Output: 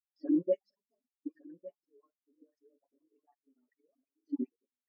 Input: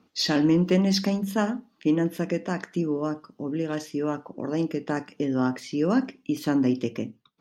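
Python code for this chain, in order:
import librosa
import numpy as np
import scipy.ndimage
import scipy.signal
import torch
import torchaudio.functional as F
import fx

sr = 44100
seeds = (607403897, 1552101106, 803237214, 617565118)

p1 = fx.spec_dropout(x, sr, seeds[0], share_pct=36)
p2 = fx.level_steps(p1, sr, step_db=21)
p3 = scipy.signal.sosfilt(scipy.signal.butter(2, 400.0, 'highpass', fs=sr, output='sos'), p2)
p4 = fx.dispersion(p3, sr, late='highs', ms=89.0, hz=900.0)
p5 = fx.stretch_grains(p4, sr, factor=0.66, grain_ms=43.0)
p6 = p5 + 0.42 * np.pad(p5, (int(7.2 * sr / 1000.0), 0))[:len(p5)]
p7 = p6 + fx.echo_single(p6, sr, ms=1156, db=-10.0, dry=0)
p8 = fx.leveller(p7, sr, passes=1)
y = fx.spectral_expand(p8, sr, expansion=2.5)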